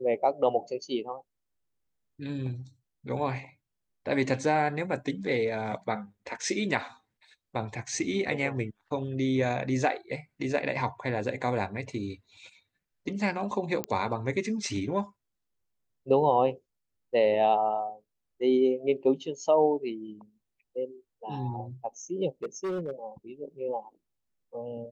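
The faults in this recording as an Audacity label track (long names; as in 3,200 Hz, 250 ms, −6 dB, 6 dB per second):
13.840000	13.840000	click −14 dBFS
22.430000	22.920000	clipping −28.5 dBFS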